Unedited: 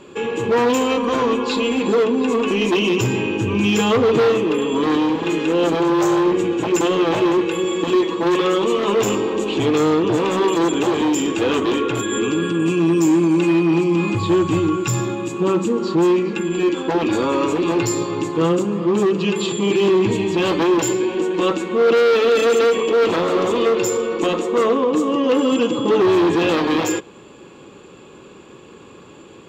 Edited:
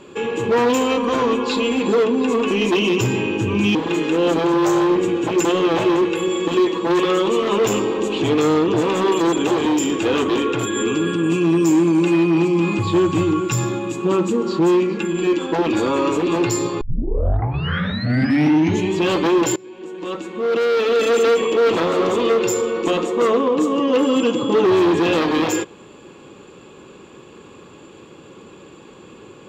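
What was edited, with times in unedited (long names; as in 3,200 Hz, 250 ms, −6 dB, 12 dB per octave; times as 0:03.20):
0:03.75–0:05.11: remove
0:18.17: tape start 2.13 s
0:20.92–0:22.66: fade in, from −24 dB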